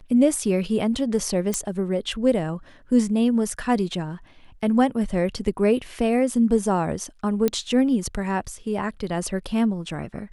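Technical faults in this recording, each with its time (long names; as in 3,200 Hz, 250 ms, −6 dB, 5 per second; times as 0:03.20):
0:01.54: click
0:07.48: click −9 dBFS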